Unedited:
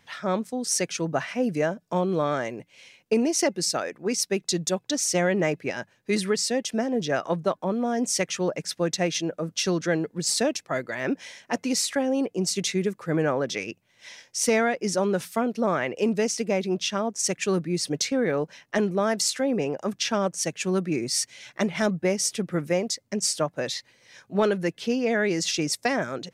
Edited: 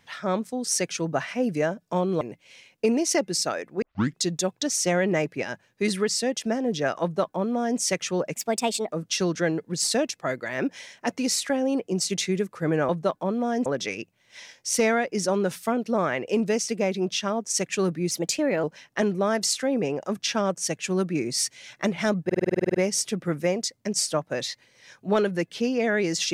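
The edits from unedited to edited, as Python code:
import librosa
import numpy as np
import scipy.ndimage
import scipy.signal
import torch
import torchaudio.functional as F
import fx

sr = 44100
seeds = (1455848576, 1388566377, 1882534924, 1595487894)

y = fx.edit(x, sr, fx.cut(start_s=2.21, length_s=0.28),
    fx.tape_start(start_s=4.1, length_s=0.35),
    fx.duplicate(start_s=7.3, length_s=0.77, to_s=13.35),
    fx.speed_span(start_s=8.63, length_s=0.75, speed=1.32),
    fx.speed_span(start_s=17.8, length_s=0.6, speed=1.14),
    fx.stutter(start_s=22.01, slice_s=0.05, count=11), tone=tone)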